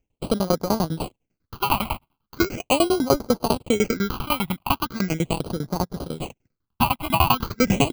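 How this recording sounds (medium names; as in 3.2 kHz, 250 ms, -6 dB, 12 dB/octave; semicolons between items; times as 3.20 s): tremolo saw down 10 Hz, depth 100%; aliases and images of a low sample rate 1.8 kHz, jitter 0%; phasing stages 6, 0.39 Hz, lowest notch 440–2600 Hz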